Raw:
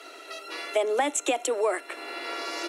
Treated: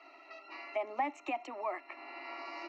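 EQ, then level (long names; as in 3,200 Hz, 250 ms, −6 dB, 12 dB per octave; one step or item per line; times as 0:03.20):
high-frequency loss of the air 340 metres
phaser with its sweep stopped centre 2,300 Hz, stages 8
−3.5 dB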